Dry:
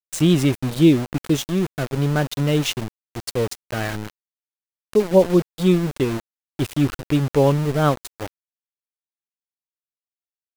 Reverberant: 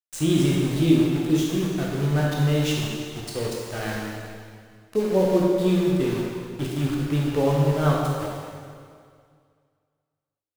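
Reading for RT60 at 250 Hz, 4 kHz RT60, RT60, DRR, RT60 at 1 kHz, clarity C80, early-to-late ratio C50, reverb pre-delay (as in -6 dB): 2.1 s, 2.0 s, 2.1 s, -3.5 dB, 2.1 s, 1.0 dB, -1.0 dB, 8 ms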